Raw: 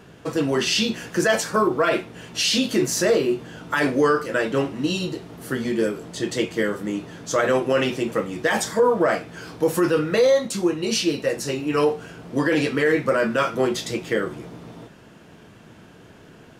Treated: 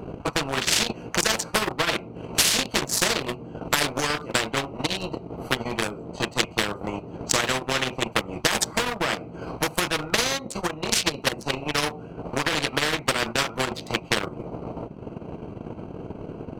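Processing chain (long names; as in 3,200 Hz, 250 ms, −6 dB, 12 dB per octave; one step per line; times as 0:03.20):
adaptive Wiener filter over 25 samples
transient designer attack +12 dB, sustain −10 dB
every bin compressed towards the loudest bin 4 to 1
level −3.5 dB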